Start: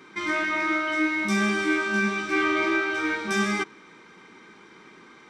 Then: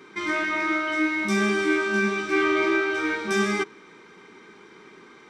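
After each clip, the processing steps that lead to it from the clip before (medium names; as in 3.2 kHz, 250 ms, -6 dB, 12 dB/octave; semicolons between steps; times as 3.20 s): peaking EQ 410 Hz +6.5 dB 0.29 oct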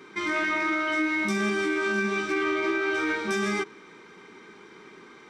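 peak limiter -18 dBFS, peak gain reduction 6.5 dB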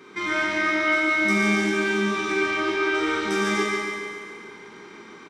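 feedback delay 141 ms, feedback 56%, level -5 dB; Schroeder reverb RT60 1.6 s, combs from 28 ms, DRR -1 dB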